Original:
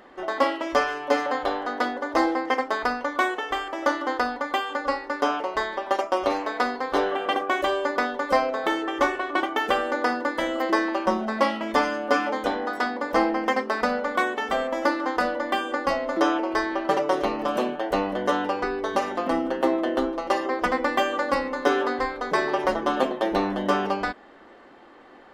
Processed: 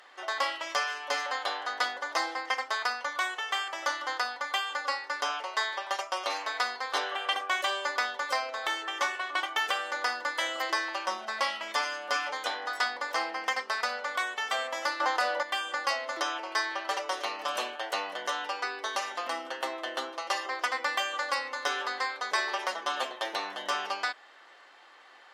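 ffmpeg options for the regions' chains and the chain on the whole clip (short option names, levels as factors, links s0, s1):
-filter_complex "[0:a]asettb=1/sr,asplit=3[s0][s1][s2];[s0]atrim=end=15.004[s3];[s1]atrim=start=15:end=15.43,asetpts=PTS-STARTPTS,afade=t=in:d=0.004:c=qsin,afade=t=out:st=0.426:d=0.004:c=qsin,equalizer=f=660:t=o:w=1.2:g=6,acontrast=81[s4];[s2]atrim=start=15.426[s5];[s3][s4]acrossfade=d=0.004:c1=hsin:c2=qsin[s6];[s6][s5]acrossfade=d=0.004:c1=qsin:c2=hsin,equalizer=f=6200:w=0.31:g=11.5,alimiter=limit=0.335:level=0:latency=1:release=436,highpass=760,volume=0.531"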